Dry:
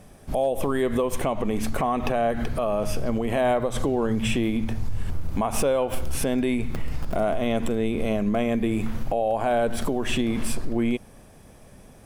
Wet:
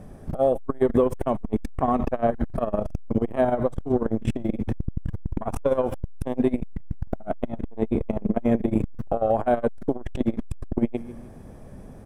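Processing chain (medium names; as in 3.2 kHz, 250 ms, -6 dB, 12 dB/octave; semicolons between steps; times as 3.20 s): FFT filter 280 Hz 0 dB, 1.8 kHz -8 dB, 2.6 kHz -14 dB; on a send: feedback delay 152 ms, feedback 42%, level -21.5 dB; on the sum: transformer saturation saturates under 160 Hz; trim +7 dB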